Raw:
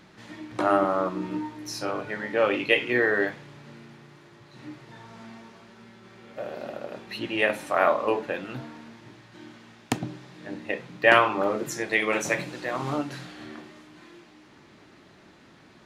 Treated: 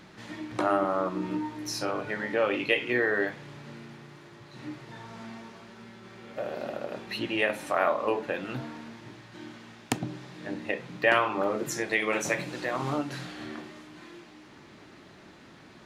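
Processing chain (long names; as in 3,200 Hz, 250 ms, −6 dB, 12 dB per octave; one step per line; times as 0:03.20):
downward compressor 1.5 to 1, threshold −33 dBFS, peak gain reduction 8 dB
level +2 dB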